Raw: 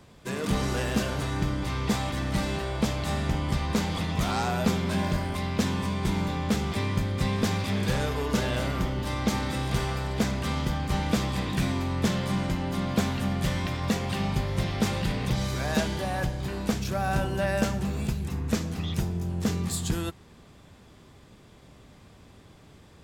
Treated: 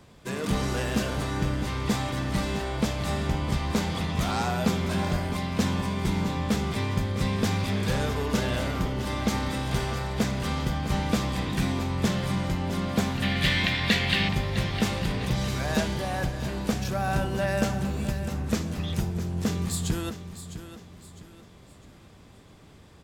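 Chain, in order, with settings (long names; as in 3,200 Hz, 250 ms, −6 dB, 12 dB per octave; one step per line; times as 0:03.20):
0:13.22–0:14.29: flat-topped bell 2,700 Hz +12.5 dB
repeating echo 656 ms, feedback 37%, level −12 dB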